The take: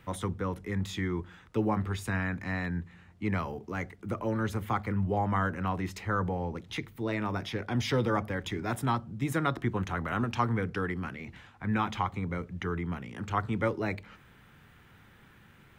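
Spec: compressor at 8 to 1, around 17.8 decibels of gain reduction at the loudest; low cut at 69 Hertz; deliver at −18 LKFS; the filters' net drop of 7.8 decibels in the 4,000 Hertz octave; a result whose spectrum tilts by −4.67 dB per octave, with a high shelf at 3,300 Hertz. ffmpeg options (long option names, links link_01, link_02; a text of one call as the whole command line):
ffmpeg -i in.wav -af "highpass=69,highshelf=frequency=3300:gain=-3.5,equalizer=frequency=4000:width_type=o:gain=-8,acompressor=threshold=-43dB:ratio=8,volume=29dB" out.wav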